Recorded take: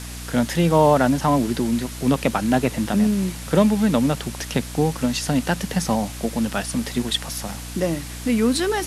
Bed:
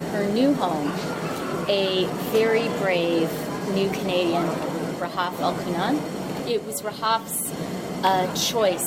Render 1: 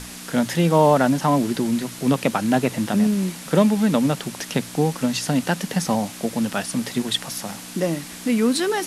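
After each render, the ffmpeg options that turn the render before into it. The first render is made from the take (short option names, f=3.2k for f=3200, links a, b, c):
-af "bandreject=f=60:t=h:w=6,bandreject=f=120:t=h:w=6"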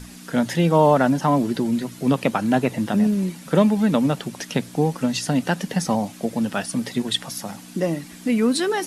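-af "afftdn=nr=9:nf=-37"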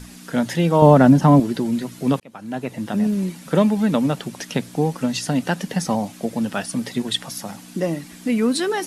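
-filter_complex "[0:a]asettb=1/sr,asplit=3[a][b][c];[a]atrim=end=0.824[d];[b]atrim=start=0.82:end=1.4,asetpts=PTS-STARTPTS,afade=t=in:d=0.004:c=qsin,afade=t=out:st=0.576:d=0.004:c=qsin,lowshelf=f=380:g=11.5[e];[c]atrim=start=1.396[f];[d][e]acrossfade=d=0.004:c1=hsin:c2=qsin[g];[g][f]acrossfade=d=0.004:c1=qsin:c2=hsin,asplit=2[h][i];[h]atrim=end=2.2,asetpts=PTS-STARTPTS,afade=t=out:st=2.196:d=0.004:c=hsin[j];[i]atrim=start=2.2,asetpts=PTS-STARTPTS,afade=t=in:d=0.97[k];[j][k]concat=n=2:v=0:a=1"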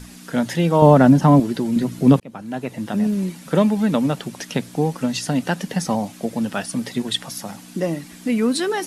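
-filter_complex "[0:a]asettb=1/sr,asplit=3[a][b][c];[a]atrim=end=1.764[d];[b]atrim=start=1.76:end=2.42,asetpts=PTS-STARTPTS,afade=t=in:d=0.004:c=qsin,afade=t=out:st=0.656:d=0.004:c=qsin,lowshelf=f=490:g=9[e];[c]atrim=start=2.416[f];[d][e]acrossfade=d=0.004:c1=hsin:c2=qsin[g];[g][f]acrossfade=d=0.004:c1=qsin:c2=hsin"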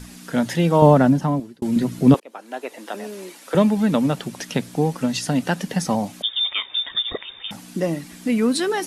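-filter_complex "[0:a]asettb=1/sr,asplit=3[a][b][c];[a]atrim=end=2.144[d];[b]atrim=start=2.14:end=3.55,asetpts=PTS-STARTPTS,afade=t=in:d=0.004:c=qsin,afade=t=out:st=1.406:d=0.004:c=qsin,highpass=f=360:w=0.5412,highpass=f=360:w=1.3066[e];[c]atrim=start=3.546[f];[d][e]acrossfade=d=0.004:c1=hsin:c2=qsin[g];[g][f]acrossfade=d=0.004:c1=qsin:c2=hsin,asettb=1/sr,asplit=3[h][i][j];[h]atrim=end=6.224[k];[i]atrim=start=6.22:end=7.51,asetpts=PTS-STARTPTS,afade=t=in:d=0.004:c=qsin,afade=t=out:st=1.286:d=0.004:c=qsin,lowpass=f=3.2k:t=q:w=0.5098,lowpass=f=3.2k:t=q:w=0.6013,lowpass=f=3.2k:t=q:w=0.9,lowpass=f=3.2k:t=q:w=2.563,afreqshift=-3800[l];[j]atrim=start=7.506[m];[k][l]acrossfade=d=0.004:c1=hsin:c2=qsin[n];[n][m]acrossfade=d=0.004:c1=qsin:c2=hsin,asplit=2[o][p];[o]atrim=end=1.62,asetpts=PTS-STARTPTS,afade=t=out:st=0.78:d=0.84[q];[p]atrim=start=1.62,asetpts=PTS-STARTPTS,afade=t=in:d=0.004:c=hsin[r];[q][r]concat=n=2:v=0:a=1"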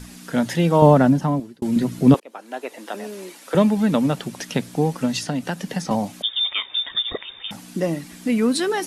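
-filter_complex "[0:a]asettb=1/sr,asplit=3[a][b][c];[a]atrim=end=5.234[d];[b]atrim=start=5.23:end=5.91,asetpts=PTS-STARTPTS,afade=t=in:d=0.004:c=qsin,afade=t=out:st=0.676:d=0.004:c=qsin,acrossover=split=180|6400[e][f][g];[e]acompressor=threshold=-31dB:ratio=4[h];[f]acompressor=threshold=-24dB:ratio=4[i];[g]acompressor=threshold=-45dB:ratio=4[j];[h][i][j]amix=inputs=3:normalize=0[k];[c]atrim=start=5.906[l];[d][k]acrossfade=d=0.004:c1=hsin:c2=qsin[m];[m][l]acrossfade=d=0.004:c1=qsin:c2=hsin"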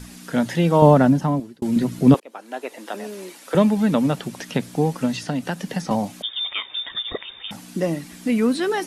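-filter_complex "[0:a]acrossover=split=3200[a][b];[b]acompressor=threshold=-34dB:ratio=4:attack=1:release=60[c];[a][c]amix=inputs=2:normalize=0"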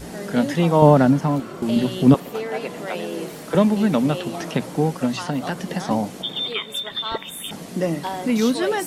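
-filter_complex "[1:a]volume=-8.5dB[a];[0:a][a]amix=inputs=2:normalize=0"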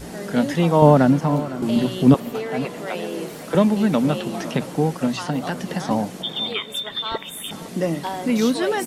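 -filter_complex "[0:a]asplit=2[a][b];[b]adelay=507.3,volume=-15dB,highshelf=f=4k:g=-11.4[c];[a][c]amix=inputs=2:normalize=0"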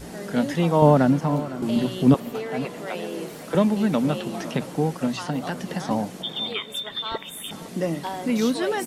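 -af "volume=-3dB"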